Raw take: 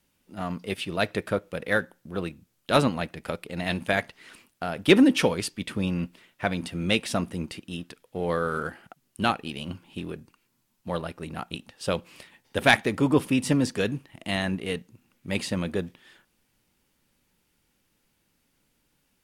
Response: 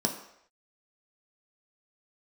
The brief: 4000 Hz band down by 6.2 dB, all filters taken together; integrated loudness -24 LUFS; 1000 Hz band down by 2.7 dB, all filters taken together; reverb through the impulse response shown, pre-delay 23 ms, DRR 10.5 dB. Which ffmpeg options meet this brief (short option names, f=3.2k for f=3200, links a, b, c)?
-filter_complex "[0:a]equalizer=f=1k:t=o:g=-3.5,equalizer=f=4k:t=o:g=-8,asplit=2[a][b];[1:a]atrim=start_sample=2205,adelay=23[c];[b][c]afir=irnorm=-1:irlink=0,volume=-18dB[d];[a][d]amix=inputs=2:normalize=0,volume=3dB"